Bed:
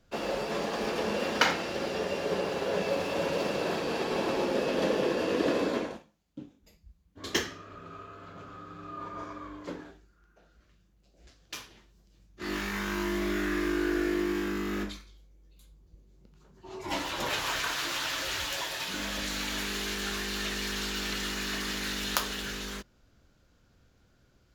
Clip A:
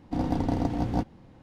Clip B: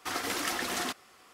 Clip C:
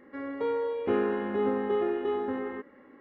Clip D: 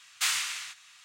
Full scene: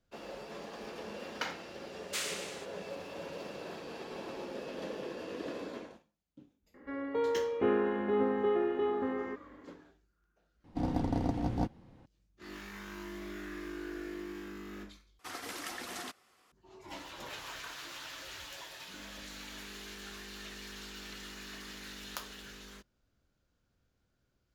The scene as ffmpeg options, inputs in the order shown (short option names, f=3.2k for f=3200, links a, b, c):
-filter_complex "[0:a]volume=-13dB[a];[2:a]aresample=32000,aresample=44100[b];[a]asplit=3[c][d][e];[c]atrim=end=10.644[f];[1:a]atrim=end=1.42,asetpts=PTS-STARTPTS,volume=-5dB[g];[d]atrim=start=12.056:end=15.194[h];[b]atrim=end=1.33,asetpts=PTS-STARTPTS,volume=-9.5dB[i];[e]atrim=start=16.516[j];[4:a]atrim=end=1.04,asetpts=PTS-STARTPTS,volume=-9dB,afade=t=in:d=0.004:c=hsin,afade=t=out:st=1.036:d=0.004:c=hsin,adelay=1920[k];[3:a]atrim=end=3,asetpts=PTS-STARTPTS,volume=-2dB,afade=t=in:d=0.004:c=hsin,afade=t=out:st=2.996:d=0.004:c=hsin,adelay=297234S[l];[f][g]acrossfade=d=0.004:c1=hsin:c2=hsin[m];[m][h]acrossfade=d=0.004:c1=hsin:c2=hsin[n];[n][i]acrossfade=d=0.004:c1=hsin:c2=hsin[o];[o][j]acrossfade=d=0.004:c1=hsin:c2=hsin[p];[p][k][l]amix=inputs=3:normalize=0"